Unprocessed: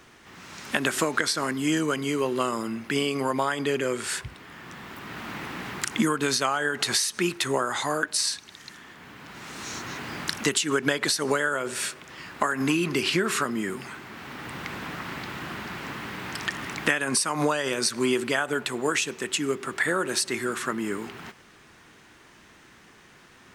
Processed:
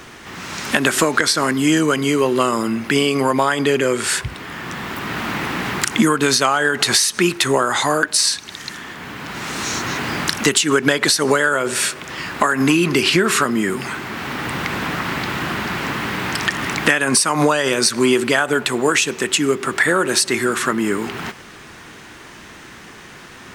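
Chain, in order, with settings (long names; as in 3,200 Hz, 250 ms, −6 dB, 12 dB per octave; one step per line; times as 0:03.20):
in parallel at +0.5 dB: downward compressor, threshold −35 dBFS, peak gain reduction 16.5 dB
on the sum: soft clipping −8.5 dBFS, distortion −26 dB
level +7.5 dB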